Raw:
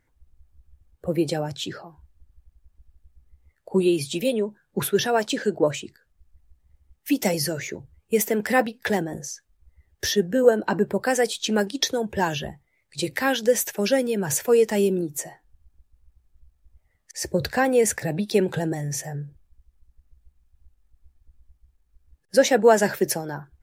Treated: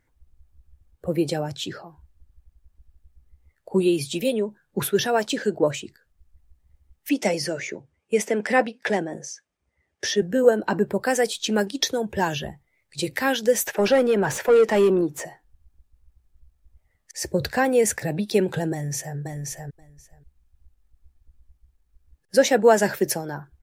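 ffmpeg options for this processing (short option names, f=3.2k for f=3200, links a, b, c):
-filter_complex "[0:a]asettb=1/sr,asplit=3[a][b][c];[a]atrim=end=7.094[d];[b]atrim=start=7.09:end=10.22,asetpts=PTS-STARTPTS,afade=t=in:d=0.004:c=qsin,afade=t=out:st=3.126:d=0.004:c=qsin,highpass=190,equalizer=f=600:t=q:w=4:g=3,equalizer=f=2.3k:t=q:w=4:g=3,equalizer=f=4.1k:t=q:w=4:g=-4,equalizer=f=7.4k:t=q:w=4:g=-4,lowpass=f=8.8k:w=0.5412,lowpass=f=8.8k:w=1.3066[e];[c]atrim=start=10.216[f];[d][e]acrossfade=d=0.004:c1=hsin:c2=qsin[g];[g][f]acrossfade=d=0.004:c1=qsin:c2=hsin,asettb=1/sr,asplit=3[h][i][j];[h]atrim=end=13.664[k];[i]atrim=start=13.66:end=15.25,asetpts=PTS-STARTPTS,afade=t=in:d=0.004:c=qsin,afade=t=out:st=1.586:d=0.004:c=qsin,asplit=2[l][m];[m]highpass=f=720:p=1,volume=19dB,asoftclip=type=tanh:threshold=-8.5dB[n];[l][n]amix=inputs=2:normalize=0,lowpass=f=1.2k:p=1,volume=-6dB[o];[j]atrim=start=15.246[p];[k][o]acrossfade=d=0.004:c1=hsin:c2=qsin[q];[q][p]acrossfade=d=0.004:c1=qsin:c2=hsin,asplit=2[r][s];[s]afade=t=in:st=18.72:d=0.01,afade=t=out:st=19.17:d=0.01,aecho=0:1:530|1060:0.668344|0.0668344[t];[r][t]amix=inputs=2:normalize=0"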